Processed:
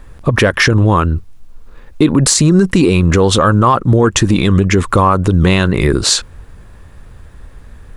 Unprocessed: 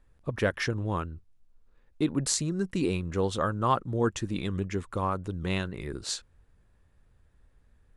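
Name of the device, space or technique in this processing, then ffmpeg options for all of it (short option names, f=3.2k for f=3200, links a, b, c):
mastering chain: -af "equalizer=f=1.1k:t=o:w=0.35:g=3,acompressor=threshold=-29dB:ratio=2.5,asoftclip=type=tanh:threshold=-16.5dB,alimiter=level_in=27dB:limit=-1dB:release=50:level=0:latency=1,volume=-1dB"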